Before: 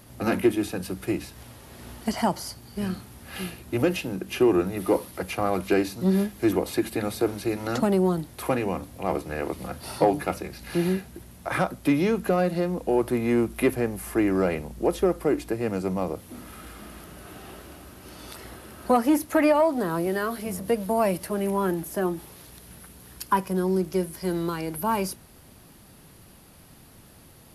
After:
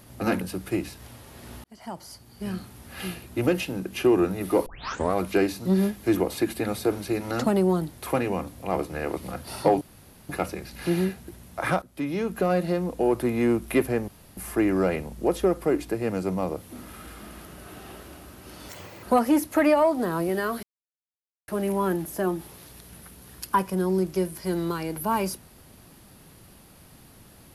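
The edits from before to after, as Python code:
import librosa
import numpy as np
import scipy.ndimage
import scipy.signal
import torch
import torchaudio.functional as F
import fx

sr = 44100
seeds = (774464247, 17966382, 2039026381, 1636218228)

y = fx.edit(x, sr, fx.cut(start_s=0.41, length_s=0.36),
    fx.fade_in_span(start_s=2.0, length_s=1.18),
    fx.tape_start(start_s=5.02, length_s=0.48),
    fx.insert_room_tone(at_s=10.17, length_s=0.48),
    fx.fade_in_from(start_s=11.7, length_s=0.73, floor_db=-16.5),
    fx.insert_room_tone(at_s=13.96, length_s=0.29),
    fx.speed_span(start_s=18.28, length_s=0.53, speed=1.56),
    fx.silence(start_s=20.41, length_s=0.85), tone=tone)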